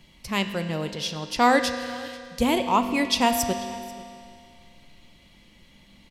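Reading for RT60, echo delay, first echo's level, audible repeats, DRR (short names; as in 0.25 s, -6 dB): 2.3 s, 0.488 s, -22.0 dB, 1, 6.5 dB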